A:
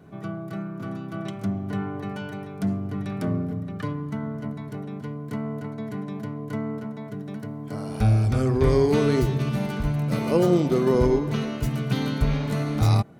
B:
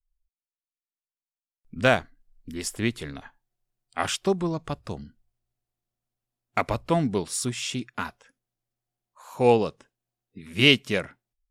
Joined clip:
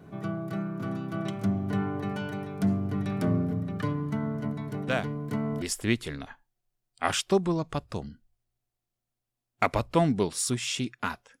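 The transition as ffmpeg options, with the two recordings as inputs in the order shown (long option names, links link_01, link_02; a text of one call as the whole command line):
ffmpeg -i cue0.wav -i cue1.wav -filter_complex "[1:a]asplit=2[link_01][link_02];[0:a]apad=whole_dur=11.4,atrim=end=11.4,atrim=end=5.622[link_03];[link_02]atrim=start=2.568:end=8.35[link_04];[link_01]atrim=start=1.83:end=2.57,asetpts=PTS-STARTPTS,volume=-9dB,afade=type=in:duration=0.004:curve=hsin,afade=type=out:start_time=0.736:duration=0.004:curve=hsin,adelay=4880[link_05];[link_03][link_04]acrossfade=duration=0.004:curve1=hsin:curve2=hsin[link_06];[link_06][link_05]amix=inputs=2:normalize=0" out.wav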